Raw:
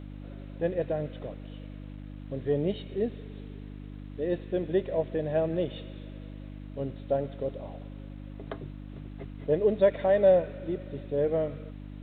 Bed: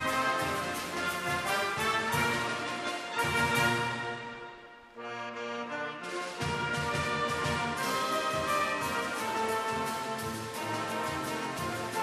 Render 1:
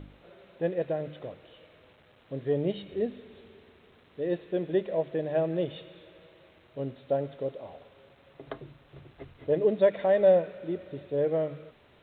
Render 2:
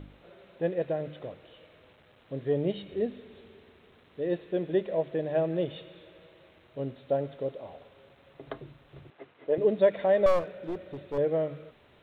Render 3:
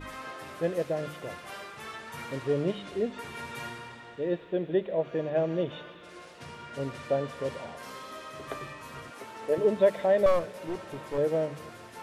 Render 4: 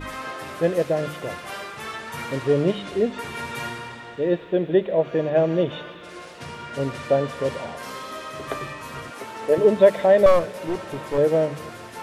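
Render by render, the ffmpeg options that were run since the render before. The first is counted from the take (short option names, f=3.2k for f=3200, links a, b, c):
-af "bandreject=f=50:t=h:w=4,bandreject=f=100:t=h:w=4,bandreject=f=150:t=h:w=4,bandreject=f=200:t=h:w=4,bandreject=f=250:t=h:w=4,bandreject=f=300:t=h:w=4"
-filter_complex "[0:a]asettb=1/sr,asplit=3[a][b][c];[a]atrim=end=9.104[d];[b]atrim=start=9.1:end=9.58,asetpts=PTS-STARTPTS,afade=t=in:d=0.004:c=qsin,afade=t=out:st=0.476:d=0.004:c=qsin,highpass=320,lowpass=3.2k[e];[c]atrim=start=9.576[f];[d][e]acrossfade=d=0.004:c1=hsin:c2=qsin[g];[g][f]acrossfade=d=0.004:c1=qsin:c2=hsin,asettb=1/sr,asplit=3[h][i][j];[h]atrim=end=10.264[k];[i]atrim=start=10.26:end=11.18,asetpts=PTS-STARTPTS,afade=t=in:d=0.004:c=qsin,afade=t=out:st=0.916:d=0.004:c=qsin,aeval=exprs='clip(val(0),-1,0.0188)':c=same[l];[j]atrim=start=11.176[m];[k][l]acrossfade=d=0.004:c1=hsin:c2=qsin[n];[n][m]acrossfade=d=0.004:c1=qsin:c2=hsin"
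-filter_complex "[1:a]volume=-12dB[a];[0:a][a]amix=inputs=2:normalize=0"
-af "volume=8dB"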